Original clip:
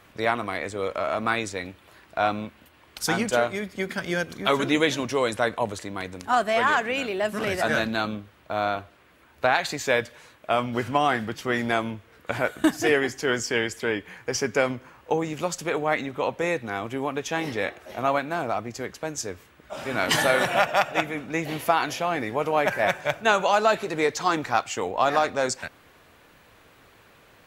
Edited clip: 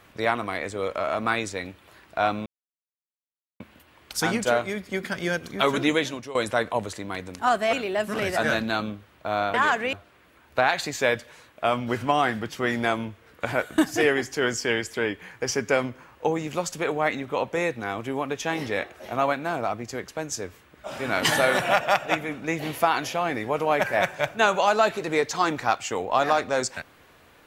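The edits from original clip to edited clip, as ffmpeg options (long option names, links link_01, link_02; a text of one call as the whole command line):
ffmpeg -i in.wav -filter_complex "[0:a]asplit=6[link_01][link_02][link_03][link_04][link_05][link_06];[link_01]atrim=end=2.46,asetpts=PTS-STARTPTS,afade=type=out:start_time=2.456:duration=0.004:curve=hsin,apad=pad_dur=1.14[link_07];[link_02]atrim=start=2.46:end=5.21,asetpts=PTS-STARTPTS,afade=type=in:duration=0.004:curve=hsin,afade=type=out:start_time=2.27:duration=0.48:silence=0.16788[link_08];[link_03]atrim=start=5.21:end=6.592,asetpts=PTS-STARTPTS,afade=type=in:duration=0.004:curve=hsin:silence=0.16788[link_09];[link_04]atrim=start=6.978:end=8.792[link_10];[link_05]atrim=start=6.588:end=6.982[link_11];[link_06]atrim=start=8.788[link_12];[link_07][link_08][link_09]concat=n=3:v=0:a=1[link_13];[link_13][link_10]acrossfade=duration=0.004:curve1=hsin:curve2=hsin[link_14];[link_14][link_11]acrossfade=duration=0.004:curve1=hsin:curve2=hsin[link_15];[link_15][link_12]acrossfade=duration=0.004:curve1=hsin:curve2=hsin" out.wav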